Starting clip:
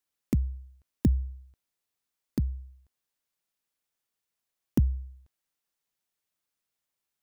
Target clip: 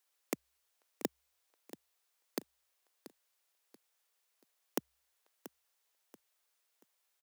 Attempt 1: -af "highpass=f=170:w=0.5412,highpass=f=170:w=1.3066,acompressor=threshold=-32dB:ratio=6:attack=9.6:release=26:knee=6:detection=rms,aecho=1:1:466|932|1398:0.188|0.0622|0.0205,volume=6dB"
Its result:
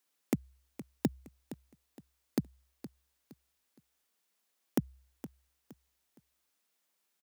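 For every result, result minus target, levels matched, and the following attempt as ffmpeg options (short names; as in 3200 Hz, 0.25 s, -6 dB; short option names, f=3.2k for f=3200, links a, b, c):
125 Hz band +15.0 dB; echo 0.217 s early
-af "highpass=f=430:w=0.5412,highpass=f=430:w=1.3066,acompressor=threshold=-32dB:ratio=6:attack=9.6:release=26:knee=6:detection=rms,aecho=1:1:466|932|1398:0.188|0.0622|0.0205,volume=6dB"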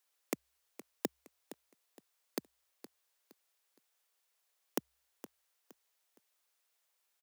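echo 0.217 s early
-af "highpass=f=430:w=0.5412,highpass=f=430:w=1.3066,acompressor=threshold=-32dB:ratio=6:attack=9.6:release=26:knee=6:detection=rms,aecho=1:1:683|1366|2049:0.188|0.0622|0.0205,volume=6dB"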